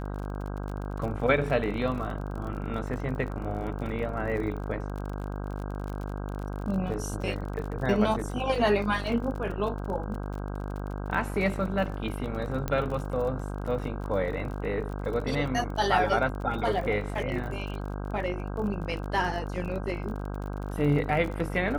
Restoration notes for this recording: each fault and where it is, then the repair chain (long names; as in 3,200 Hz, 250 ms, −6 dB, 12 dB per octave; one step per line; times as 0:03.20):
mains buzz 50 Hz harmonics 32 −34 dBFS
surface crackle 36 per second −35 dBFS
0:12.68: click −16 dBFS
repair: click removal
hum removal 50 Hz, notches 32